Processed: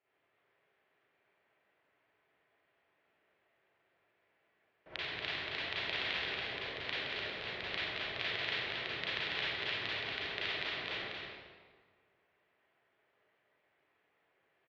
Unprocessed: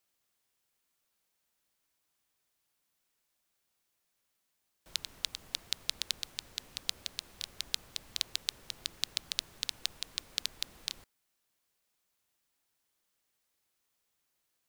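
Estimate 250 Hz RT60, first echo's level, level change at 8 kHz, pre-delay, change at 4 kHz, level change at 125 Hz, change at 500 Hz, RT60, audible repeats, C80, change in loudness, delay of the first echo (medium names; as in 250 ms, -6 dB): 1.6 s, -4.0 dB, under -20 dB, 32 ms, -1.5 dB, +8.0 dB, +16.0 dB, 1.6 s, 1, -3.0 dB, +0.5 dB, 233 ms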